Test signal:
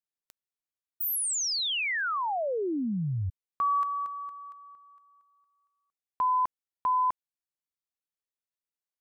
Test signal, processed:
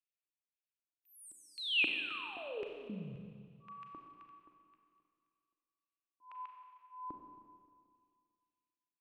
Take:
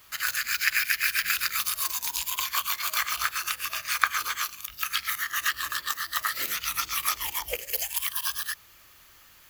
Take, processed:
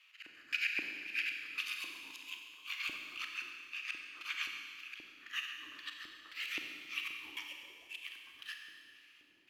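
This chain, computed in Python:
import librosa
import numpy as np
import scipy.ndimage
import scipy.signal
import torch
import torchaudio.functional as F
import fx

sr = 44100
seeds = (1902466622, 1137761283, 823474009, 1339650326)

y = fx.auto_swell(x, sr, attack_ms=225.0)
y = fx.filter_lfo_bandpass(y, sr, shape='square', hz=1.9, low_hz=310.0, high_hz=2600.0, q=5.7)
y = fx.rev_schroeder(y, sr, rt60_s=2.1, comb_ms=30, drr_db=2.5)
y = F.gain(torch.from_numpy(y), 1.5).numpy()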